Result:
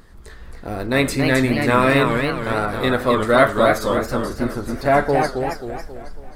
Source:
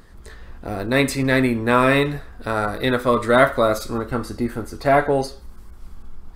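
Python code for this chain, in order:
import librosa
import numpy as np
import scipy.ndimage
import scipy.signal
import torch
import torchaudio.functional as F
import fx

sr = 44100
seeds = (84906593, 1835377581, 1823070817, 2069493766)

y = fx.echo_warbled(x, sr, ms=271, feedback_pct=46, rate_hz=2.8, cents=198, wet_db=-5)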